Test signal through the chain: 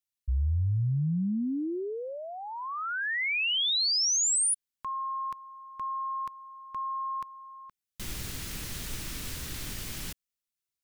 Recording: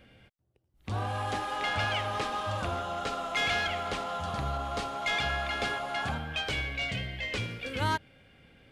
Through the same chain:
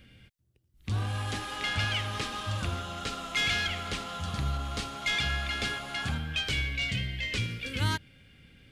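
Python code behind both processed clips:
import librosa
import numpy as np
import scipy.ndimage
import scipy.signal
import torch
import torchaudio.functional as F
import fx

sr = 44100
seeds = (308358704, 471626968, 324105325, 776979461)

y = fx.peak_eq(x, sr, hz=720.0, db=-14.0, octaves=2.0)
y = F.gain(torch.from_numpy(y), 5.0).numpy()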